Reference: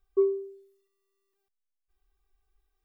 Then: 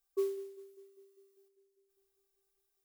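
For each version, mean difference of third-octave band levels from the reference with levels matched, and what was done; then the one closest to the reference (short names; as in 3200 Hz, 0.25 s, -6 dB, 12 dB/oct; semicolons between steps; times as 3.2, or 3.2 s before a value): 6.0 dB: tone controls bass -9 dB, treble +14 dB; on a send: darkening echo 0.199 s, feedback 73%, low-pass 840 Hz, level -18.5 dB; on the sum: modulation noise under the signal 24 dB; low shelf 140 Hz -8 dB; gain -7 dB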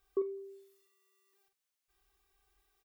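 2.5 dB: HPF 93 Hz 6 dB/oct; tilt shelf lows -3 dB, about 830 Hz; compressor 3:1, threshold -40 dBFS, peak gain reduction 13.5 dB; doubler 47 ms -7 dB; gain +5.5 dB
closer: second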